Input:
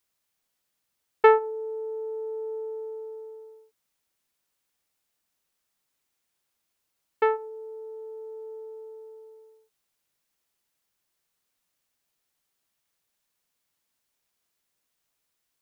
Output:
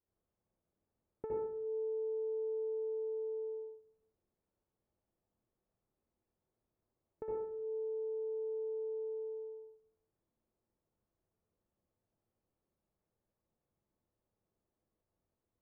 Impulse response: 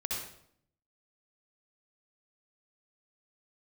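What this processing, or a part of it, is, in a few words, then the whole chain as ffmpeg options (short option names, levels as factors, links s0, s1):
television next door: -filter_complex "[0:a]acompressor=threshold=0.00631:ratio=5,lowpass=550[s0];[1:a]atrim=start_sample=2205[s1];[s0][s1]afir=irnorm=-1:irlink=0,volume=1.26"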